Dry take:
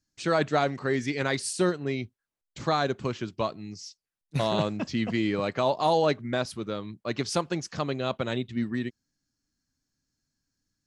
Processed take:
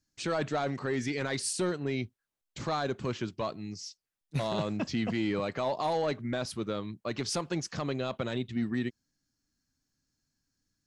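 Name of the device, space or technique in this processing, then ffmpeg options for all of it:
soft clipper into limiter: -af "asoftclip=type=tanh:threshold=0.158,alimiter=limit=0.075:level=0:latency=1:release=31"

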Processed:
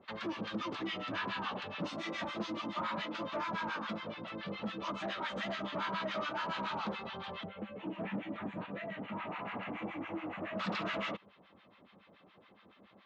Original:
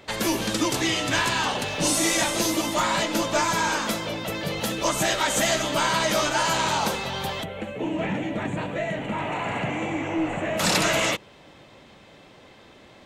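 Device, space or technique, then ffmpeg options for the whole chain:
guitar amplifier with harmonic tremolo: -filter_complex "[0:a]acrossover=split=960[s0][s1];[s0]aeval=exprs='val(0)*(1-1/2+1/2*cos(2*PI*7.1*n/s))':c=same[s2];[s1]aeval=exprs='val(0)*(1-1/2-1/2*cos(2*PI*7.1*n/s))':c=same[s3];[s2][s3]amix=inputs=2:normalize=0,asoftclip=type=tanh:threshold=0.0708,highpass=93,equalizer=f=140:t=q:w=4:g=-8,equalizer=f=200:t=q:w=4:g=9,equalizer=f=1200:t=q:w=4:g=8,lowpass=f=3800:w=0.5412,lowpass=f=3800:w=1.3066,volume=0.376"

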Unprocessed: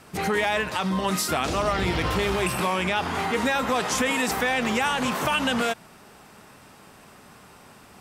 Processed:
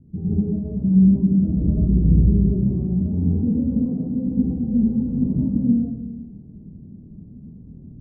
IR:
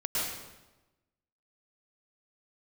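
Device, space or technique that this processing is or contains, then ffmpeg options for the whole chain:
club heard from the street: -filter_complex "[0:a]alimiter=limit=0.119:level=0:latency=1,lowpass=f=240:w=0.5412,lowpass=f=240:w=1.3066[s0];[1:a]atrim=start_sample=2205[s1];[s0][s1]afir=irnorm=-1:irlink=0,asettb=1/sr,asplit=3[s2][s3][s4];[s2]atrim=end=3.864[s5];[s3]atrim=start=3.86:end=4.27,asetpts=PTS-STARTPTS,afade=t=in:d=0.004:c=qsin,afade=t=out:st=0.406:d=0.004:c=qsin,highpass=120[s6];[s4]atrim=start=4.266[s7];[s5][s6]acrossfade=d=0.004:c1=hsin:c2=qsin[s8];[s8][s7]acrossfade=d=0.004:c1=qsin:c2=hsin,volume=2.51"

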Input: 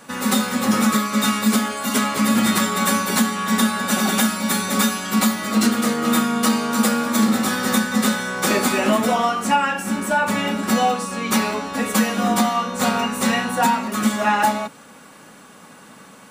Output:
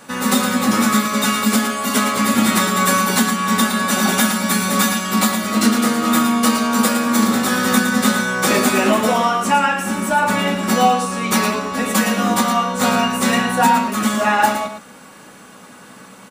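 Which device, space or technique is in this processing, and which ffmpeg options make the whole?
slapback doubling: -filter_complex "[0:a]asplit=3[s0][s1][s2];[s1]adelay=16,volume=0.355[s3];[s2]adelay=113,volume=0.422[s4];[s0][s3][s4]amix=inputs=3:normalize=0,volume=1.26"

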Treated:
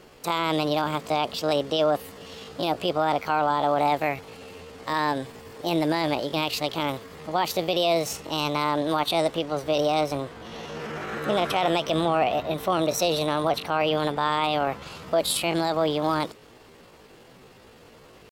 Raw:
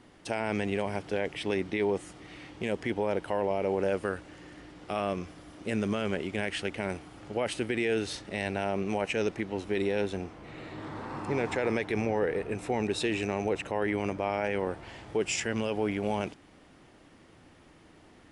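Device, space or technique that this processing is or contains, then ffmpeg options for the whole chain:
chipmunk voice: -af "asetrate=66075,aresample=44100,atempo=0.66742,volume=2"

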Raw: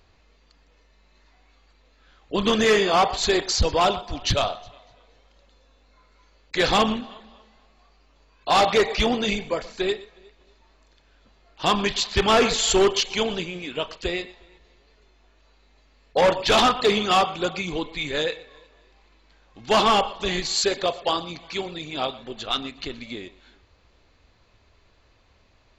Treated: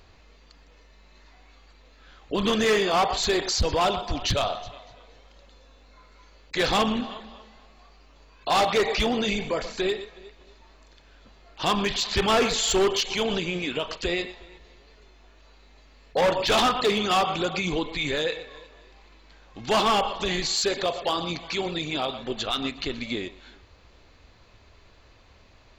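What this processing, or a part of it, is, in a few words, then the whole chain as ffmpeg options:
clipper into limiter: -af "asoftclip=type=hard:threshold=0.178,alimiter=limit=0.075:level=0:latency=1:release=76,volume=1.78"

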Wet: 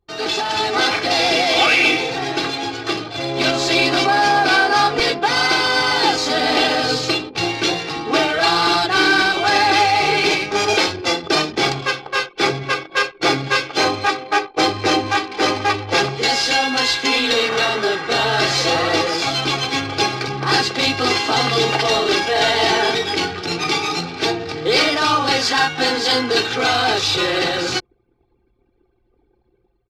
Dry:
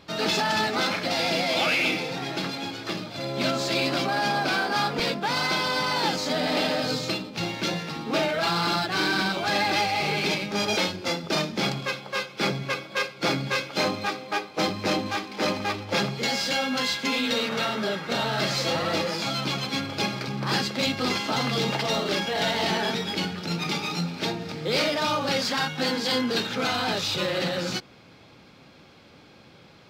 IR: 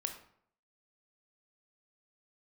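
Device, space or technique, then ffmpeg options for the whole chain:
voice memo with heavy noise removal: -af "aecho=1:1:2.6:0.66,anlmdn=0.631,dynaudnorm=f=450:g=3:m=2.37,lowpass=9000,equalizer=f=210:w=1.7:g=-5,volume=1.12"

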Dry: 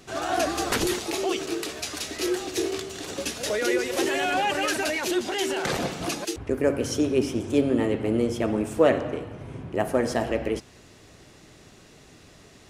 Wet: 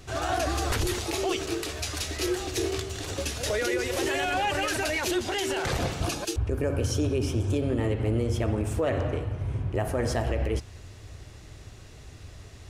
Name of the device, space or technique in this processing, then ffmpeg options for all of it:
car stereo with a boomy subwoofer: -filter_complex "[0:a]lowshelf=f=130:t=q:w=1.5:g=12,alimiter=limit=0.126:level=0:latency=1:release=55,asettb=1/sr,asplit=3[s0][s1][s2];[s0]atrim=end=6.014[s3];[s1]atrim=start=6.01:end=7.62,asetpts=PTS-STARTPTS,afade=t=in:d=0.004:c=qsin,afade=t=out:st=1.606:d=0.004:c=qsin,bandreject=f=2000:w=7.2[s4];[s2]atrim=start=7.616[s5];[s3][s4]acrossfade=d=0.004:c1=hsin:c2=qsin[s6];[s6][s5]acrossfade=d=0.004:c1=qsin:c2=hsin"

